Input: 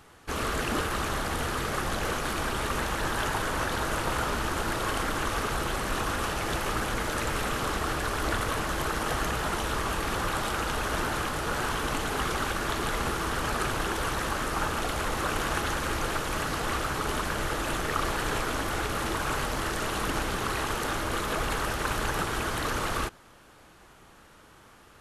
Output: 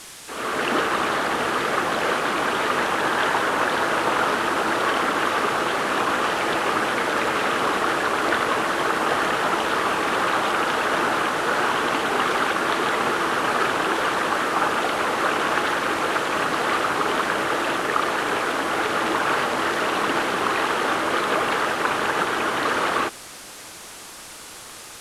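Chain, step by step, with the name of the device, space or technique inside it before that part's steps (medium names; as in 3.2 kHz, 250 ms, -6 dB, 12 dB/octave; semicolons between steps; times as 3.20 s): dictaphone (band-pass 280–3400 Hz; level rider gain up to 12.5 dB; wow and flutter; white noise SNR 15 dB); low-pass 11 kHz 24 dB/octave; trim -3 dB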